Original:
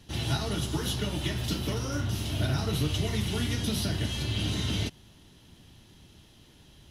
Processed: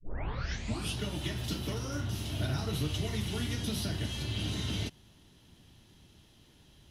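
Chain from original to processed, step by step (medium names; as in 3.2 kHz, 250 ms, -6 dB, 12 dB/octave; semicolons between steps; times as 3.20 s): tape start-up on the opening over 1.00 s; trim -4.5 dB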